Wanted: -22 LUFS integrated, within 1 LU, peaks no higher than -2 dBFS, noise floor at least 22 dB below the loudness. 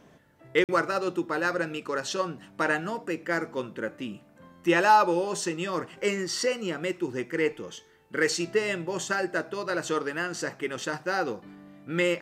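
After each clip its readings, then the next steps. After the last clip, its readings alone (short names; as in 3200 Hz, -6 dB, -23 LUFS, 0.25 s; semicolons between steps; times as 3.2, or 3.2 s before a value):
dropouts 1; longest dropout 48 ms; loudness -28.0 LUFS; peak -11.5 dBFS; loudness target -22.0 LUFS
-> interpolate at 0.64, 48 ms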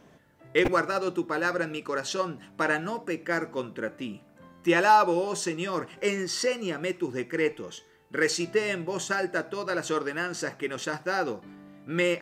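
dropouts 0; loudness -28.0 LUFS; peak -11.5 dBFS; loudness target -22.0 LUFS
-> gain +6 dB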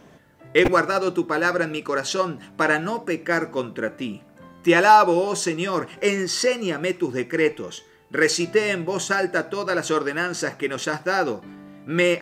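loudness -22.0 LUFS; peak -5.5 dBFS; noise floor -51 dBFS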